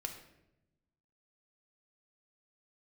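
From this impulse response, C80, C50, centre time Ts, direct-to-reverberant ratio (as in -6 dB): 10.0 dB, 7.5 dB, 20 ms, 3.5 dB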